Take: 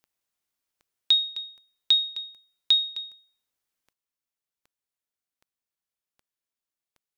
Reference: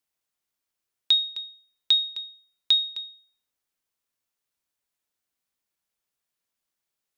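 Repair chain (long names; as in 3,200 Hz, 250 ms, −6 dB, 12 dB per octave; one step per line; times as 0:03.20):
click removal
level 0 dB, from 0:03.93 +7.5 dB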